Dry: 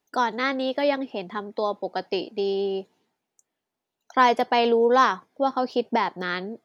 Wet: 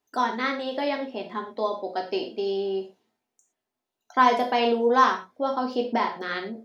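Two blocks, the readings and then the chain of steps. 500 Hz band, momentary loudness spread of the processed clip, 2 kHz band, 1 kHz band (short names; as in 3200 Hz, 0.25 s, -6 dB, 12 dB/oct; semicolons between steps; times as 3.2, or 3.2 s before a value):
-2.5 dB, 11 LU, -1.5 dB, -0.5 dB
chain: non-linear reverb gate 0.14 s falling, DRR 1.5 dB; gain -4 dB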